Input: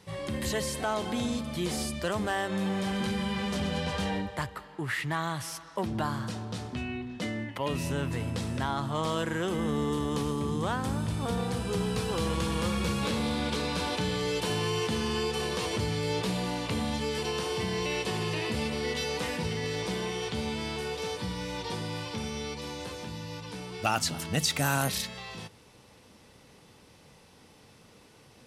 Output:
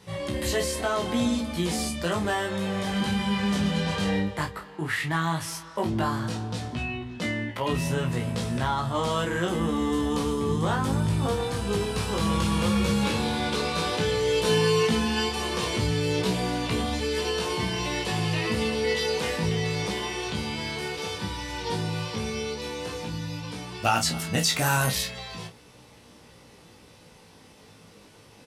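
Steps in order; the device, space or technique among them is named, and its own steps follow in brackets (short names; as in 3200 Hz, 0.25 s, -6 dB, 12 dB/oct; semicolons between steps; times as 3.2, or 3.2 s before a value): double-tracked vocal (doubler 30 ms -8 dB; chorus 0.12 Hz, delay 16.5 ms, depth 3 ms); 14.44–15.29 comb 4.6 ms, depth 47%; gain +6.5 dB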